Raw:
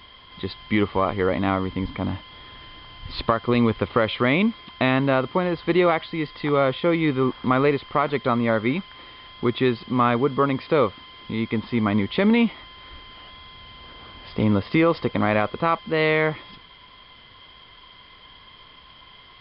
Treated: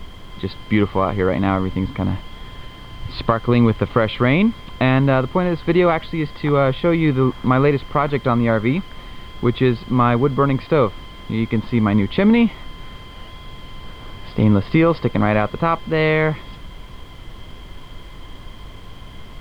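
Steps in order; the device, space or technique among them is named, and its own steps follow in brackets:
car interior (parametric band 130 Hz +6.5 dB 0.98 octaves; high-shelf EQ 3,700 Hz −5.5 dB; brown noise bed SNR 15 dB)
level +3 dB

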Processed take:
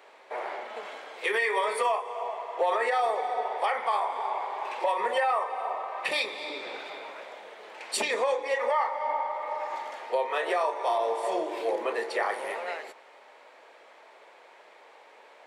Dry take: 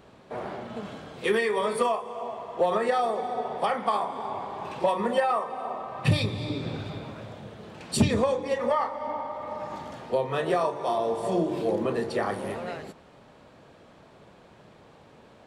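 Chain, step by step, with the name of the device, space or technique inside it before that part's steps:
laptop speaker (high-pass filter 440 Hz 24 dB per octave; parametric band 900 Hz +5 dB 0.28 octaves; parametric band 2,100 Hz +9 dB 0.54 octaves; brickwall limiter −17.5 dBFS, peak gain reduction 6 dB)

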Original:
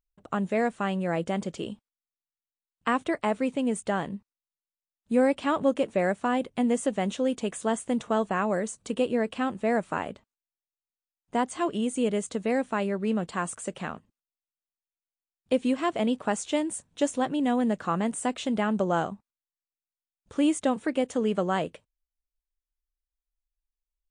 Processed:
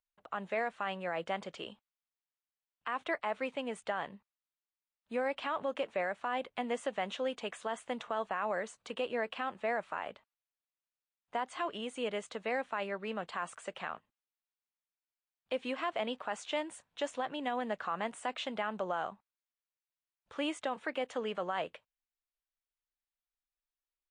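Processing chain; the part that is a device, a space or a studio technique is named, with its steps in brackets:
DJ mixer with the lows and highs turned down (three-way crossover with the lows and the highs turned down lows −17 dB, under 590 Hz, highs −18 dB, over 4,300 Hz; brickwall limiter −24.5 dBFS, peak gain reduction 10.5 dB)

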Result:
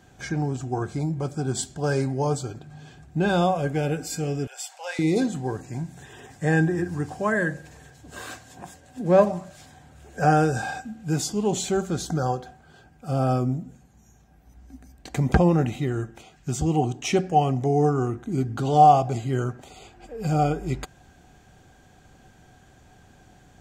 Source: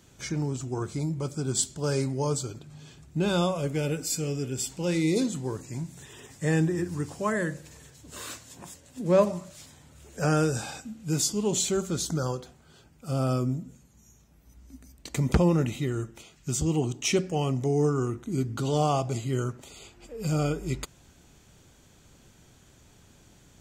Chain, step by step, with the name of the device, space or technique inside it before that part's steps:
inside a helmet (high-shelf EQ 3,400 Hz −8 dB; hollow resonant body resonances 750/1,600 Hz, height 15 dB, ringing for 65 ms)
0:04.47–0:04.99: Butterworth high-pass 590 Hz 48 dB per octave
level +3 dB

